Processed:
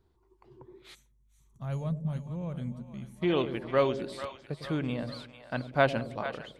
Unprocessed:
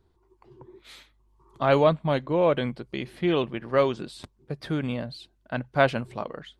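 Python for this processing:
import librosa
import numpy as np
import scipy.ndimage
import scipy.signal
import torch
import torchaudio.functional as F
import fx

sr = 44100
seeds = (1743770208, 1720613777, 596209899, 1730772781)

y = fx.echo_split(x, sr, split_hz=600.0, low_ms=102, high_ms=447, feedback_pct=52, wet_db=-10.5)
y = fx.spec_box(y, sr, start_s=0.95, length_s=2.27, low_hz=250.0, high_hz=5600.0, gain_db=-19)
y = y * librosa.db_to_amplitude(-3.5)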